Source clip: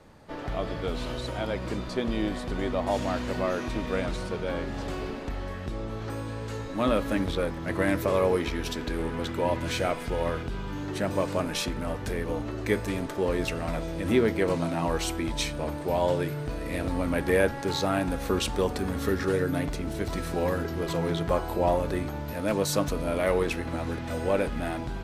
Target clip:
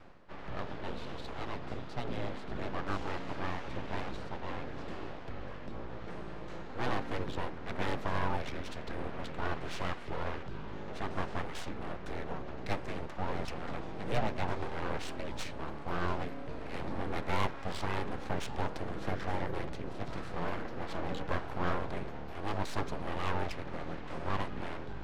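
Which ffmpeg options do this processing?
-af "areverse,acompressor=mode=upward:threshold=-35dB:ratio=2.5,areverse,afreqshift=-17,aeval=exprs='abs(val(0))':c=same,adynamicsmooth=sensitivity=4.5:basefreq=3.7k,volume=-5.5dB"

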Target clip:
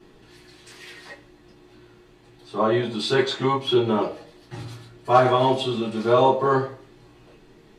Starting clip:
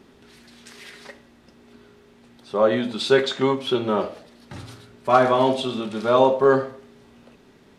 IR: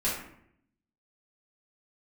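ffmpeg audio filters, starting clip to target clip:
-filter_complex "[1:a]atrim=start_sample=2205,atrim=end_sample=3528,asetrate=74970,aresample=44100[a];[0:a][a]afir=irnorm=-1:irlink=0,volume=-3dB"

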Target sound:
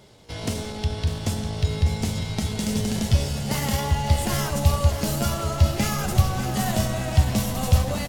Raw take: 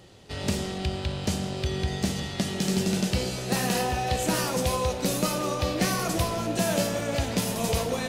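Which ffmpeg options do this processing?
-af "asetrate=49501,aresample=44100,atempo=0.890899,aecho=1:1:599|1198|1797|2396|2995:0.299|0.149|0.0746|0.0373|0.0187,asubboost=boost=7.5:cutoff=110"

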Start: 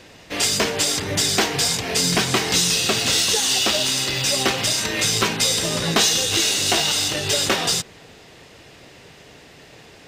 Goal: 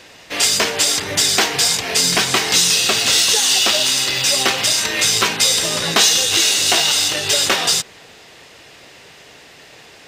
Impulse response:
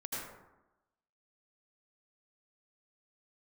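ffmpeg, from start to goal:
-af "lowshelf=f=420:g=-10,volume=5dB"

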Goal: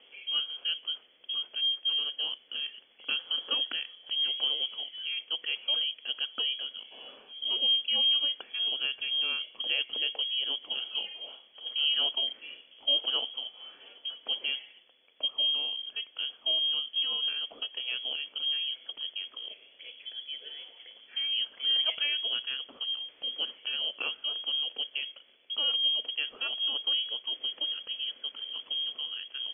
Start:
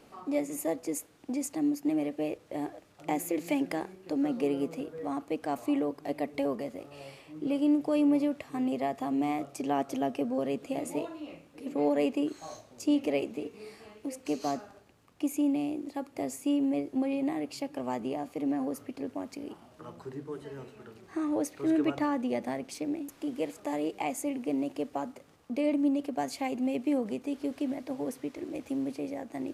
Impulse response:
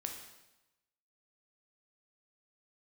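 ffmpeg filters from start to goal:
-af "lowpass=f=3k:t=q:w=0.5098,lowpass=f=3k:t=q:w=0.6013,lowpass=f=3k:t=q:w=0.9,lowpass=f=3k:t=q:w=2.563,afreqshift=-3500,equalizer=f=125:t=o:w=1:g=-7,equalizer=f=250:t=o:w=1:g=11,equalizer=f=500:t=o:w=1:g=12,equalizer=f=1k:t=o:w=1:g=-6,volume=-1dB"

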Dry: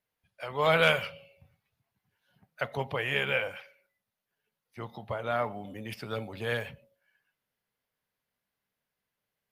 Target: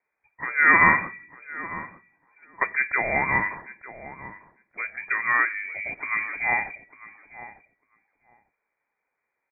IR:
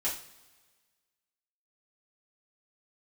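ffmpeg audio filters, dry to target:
-filter_complex "[0:a]lowpass=f=2.1k:t=q:w=0.5098,lowpass=f=2.1k:t=q:w=0.6013,lowpass=f=2.1k:t=q:w=0.9,lowpass=f=2.1k:t=q:w=2.563,afreqshift=-2500,asplit=2[a][b];[b]adelay=899,lowpass=f=1.1k:p=1,volume=-13dB,asplit=2[c][d];[d]adelay=899,lowpass=f=1.1k:p=1,volume=0.16[e];[a][c][e]amix=inputs=3:normalize=0,volume=8dB"

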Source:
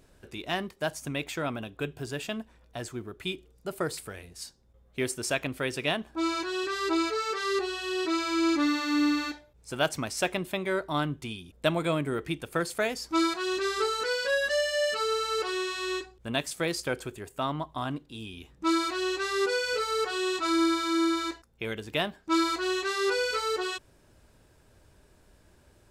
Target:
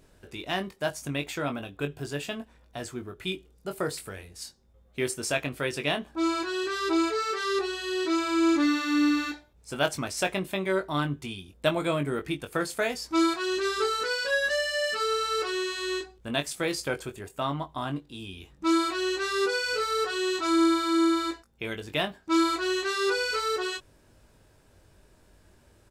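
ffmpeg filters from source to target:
-filter_complex "[0:a]asplit=2[a][b];[b]adelay=21,volume=-7dB[c];[a][c]amix=inputs=2:normalize=0"

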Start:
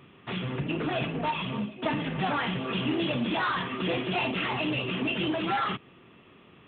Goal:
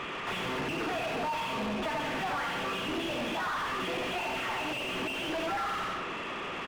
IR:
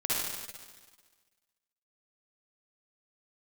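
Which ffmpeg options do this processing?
-filter_complex "[0:a]lowshelf=f=340:g=-10.5,asplit=2[a][b];[b]adelay=90,lowpass=f=2.7k:p=1,volume=-3.5dB,asplit=2[c][d];[d]adelay=90,lowpass=f=2.7k:p=1,volume=0.33,asplit=2[e][f];[f]adelay=90,lowpass=f=2.7k:p=1,volume=0.33,asplit=2[g][h];[h]adelay=90,lowpass=f=2.7k:p=1,volume=0.33[i];[a][c][e][g][i]amix=inputs=5:normalize=0,asplit=2[j][k];[1:a]atrim=start_sample=2205,afade=t=out:st=0.16:d=0.01,atrim=end_sample=7497[l];[k][l]afir=irnorm=-1:irlink=0,volume=-14dB[m];[j][m]amix=inputs=2:normalize=0,acompressor=threshold=-32dB:ratio=6,asplit=2[n][o];[o]highpass=f=720:p=1,volume=35dB,asoftclip=type=tanh:threshold=-25.5dB[p];[n][p]amix=inputs=2:normalize=0,lowpass=f=1.6k:p=1,volume=-6dB"

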